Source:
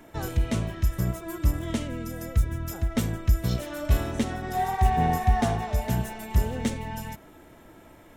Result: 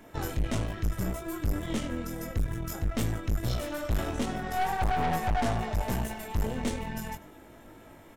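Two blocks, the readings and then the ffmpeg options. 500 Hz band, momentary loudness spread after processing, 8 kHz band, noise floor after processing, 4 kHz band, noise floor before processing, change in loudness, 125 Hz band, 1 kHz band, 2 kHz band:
-2.0 dB, 11 LU, -2.0 dB, -52 dBFS, -1.0 dB, -51 dBFS, -4.5 dB, -6.0 dB, -3.0 dB, -0.5 dB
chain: -af "aecho=1:1:95:0.0944,flanger=delay=18.5:depth=2.2:speed=2.3,aeval=exprs='(tanh(31.6*val(0)+0.6)-tanh(0.6))/31.6':c=same,volume=5.5dB"

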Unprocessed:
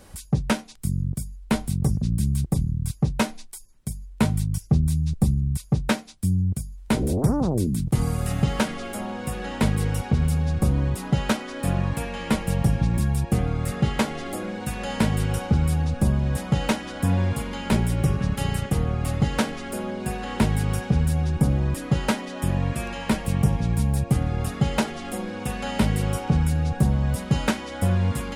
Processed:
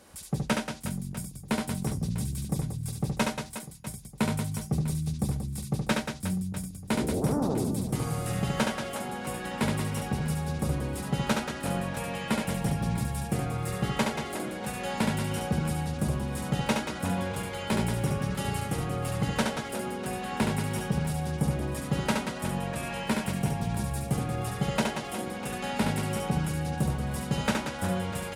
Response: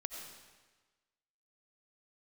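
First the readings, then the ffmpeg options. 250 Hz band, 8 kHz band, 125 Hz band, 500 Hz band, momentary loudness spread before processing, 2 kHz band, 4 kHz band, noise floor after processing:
-5.0 dB, -2.0 dB, -8.0 dB, -2.5 dB, 8 LU, -2.0 dB, -2.0 dB, -42 dBFS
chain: -af "highpass=f=210:p=1,aecho=1:1:70|182|361.2|647.9|1107:0.631|0.398|0.251|0.158|0.1,volume=-4dB" -ar 48000 -c:a libopus -b:a 96k

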